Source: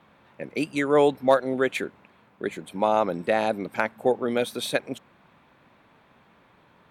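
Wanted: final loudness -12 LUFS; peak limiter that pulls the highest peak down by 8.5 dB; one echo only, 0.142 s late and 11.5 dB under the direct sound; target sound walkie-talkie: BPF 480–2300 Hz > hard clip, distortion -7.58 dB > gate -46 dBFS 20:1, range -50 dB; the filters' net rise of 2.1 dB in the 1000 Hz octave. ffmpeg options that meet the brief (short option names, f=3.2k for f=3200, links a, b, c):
-af "equalizer=f=1k:t=o:g=3.5,alimiter=limit=-13dB:level=0:latency=1,highpass=480,lowpass=2.3k,aecho=1:1:142:0.266,asoftclip=type=hard:threshold=-26dB,agate=range=-50dB:threshold=-46dB:ratio=20,volume=21dB"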